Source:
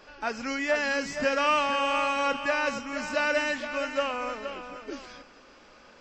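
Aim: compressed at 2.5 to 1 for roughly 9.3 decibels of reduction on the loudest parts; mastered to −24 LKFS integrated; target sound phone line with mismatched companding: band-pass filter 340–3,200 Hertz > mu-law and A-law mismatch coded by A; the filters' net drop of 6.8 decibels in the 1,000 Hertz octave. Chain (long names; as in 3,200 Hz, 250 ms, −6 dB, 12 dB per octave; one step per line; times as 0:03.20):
parametric band 1,000 Hz −8.5 dB
downward compressor 2.5 to 1, threshold −38 dBFS
band-pass filter 340–3,200 Hz
mu-law and A-law mismatch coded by A
level +18 dB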